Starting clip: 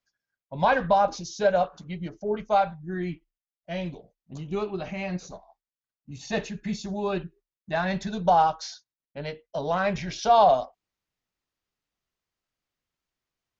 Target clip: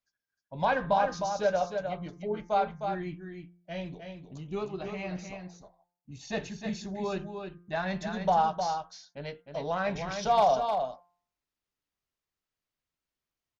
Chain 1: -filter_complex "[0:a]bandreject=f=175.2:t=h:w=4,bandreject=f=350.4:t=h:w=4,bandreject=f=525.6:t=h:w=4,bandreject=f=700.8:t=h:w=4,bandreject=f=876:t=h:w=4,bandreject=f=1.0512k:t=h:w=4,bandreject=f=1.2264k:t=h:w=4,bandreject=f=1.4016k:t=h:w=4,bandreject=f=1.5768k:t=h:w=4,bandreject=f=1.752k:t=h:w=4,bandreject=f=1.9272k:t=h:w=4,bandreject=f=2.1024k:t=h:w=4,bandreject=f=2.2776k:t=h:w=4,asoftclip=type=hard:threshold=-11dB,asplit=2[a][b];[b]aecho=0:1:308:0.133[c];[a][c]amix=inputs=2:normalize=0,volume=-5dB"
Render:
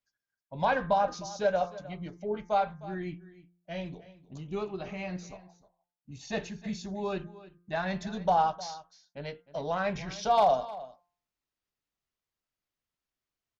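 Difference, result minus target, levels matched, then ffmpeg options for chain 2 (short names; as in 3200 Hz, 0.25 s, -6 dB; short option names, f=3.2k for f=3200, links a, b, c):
echo-to-direct -11 dB
-filter_complex "[0:a]bandreject=f=175.2:t=h:w=4,bandreject=f=350.4:t=h:w=4,bandreject=f=525.6:t=h:w=4,bandreject=f=700.8:t=h:w=4,bandreject=f=876:t=h:w=4,bandreject=f=1.0512k:t=h:w=4,bandreject=f=1.2264k:t=h:w=4,bandreject=f=1.4016k:t=h:w=4,bandreject=f=1.5768k:t=h:w=4,bandreject=f=1.752k:t=h:w=4,bandreject=f=1.9272k:t=h:w=4,bandreject=f=2.1024k:t=h:w=4,bandreject=f=2.2776k:t=h:w=4,asoftclip=type=hard:threshold=-11dB,asplit=2[a][b];[b]aecho=0:1:308:0.473[c];[a][c]amix=inputs=2:normalize=0,volume=-5dB"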